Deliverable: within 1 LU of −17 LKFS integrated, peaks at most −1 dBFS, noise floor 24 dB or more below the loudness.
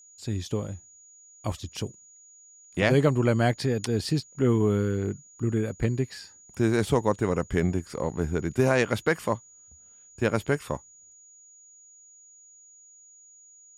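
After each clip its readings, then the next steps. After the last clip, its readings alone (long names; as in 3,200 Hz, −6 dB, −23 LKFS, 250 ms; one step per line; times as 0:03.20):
interfering tone 6,800 Hz; level of the tone −51 dBFS; integrated loudness −27.0 LKFS; sample peak −9.5 dBFS; target loudness −17.0 LKFS
→ notch filter 6,800 Hz, Q 30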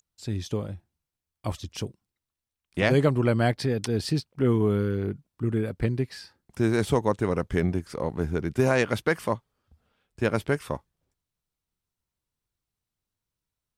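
interfering tone none found; integrated loudness −27.0 LKFS; sample peak −9.5 dBFS; target loudness −17.0 LKFS
→ level +10 dB
brickwall limiter −1 dBFS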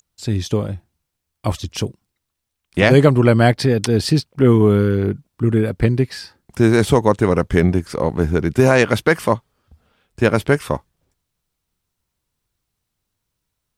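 integrated loudness −17.0 LKFS; sample peak −1.0 dBFS; background noise floor −78 dBFS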